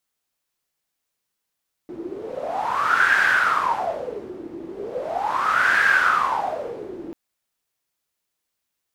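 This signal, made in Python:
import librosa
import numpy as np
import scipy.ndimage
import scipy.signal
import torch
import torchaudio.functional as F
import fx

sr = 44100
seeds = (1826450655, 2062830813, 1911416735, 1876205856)

y = fx.wind(sr, seeds[0], length_s=5.24, low_hz=330.0, high_hz=1600.0, q=11.0, gusts=2, swing_db=16.5)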